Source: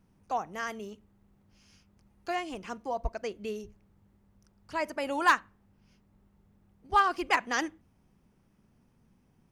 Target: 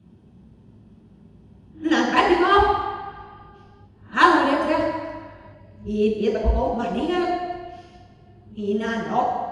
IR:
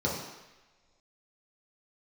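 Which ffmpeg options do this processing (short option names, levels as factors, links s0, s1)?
-filter_complex "[0:a]areverse[s0];[1:a]atrim=start_sample=2205,asetrate=32193,aresample=44100[s1];[s0][s1]afir=irnorm=-1:irlink=0,aresample=22050,aresample=44100,volume=0.891"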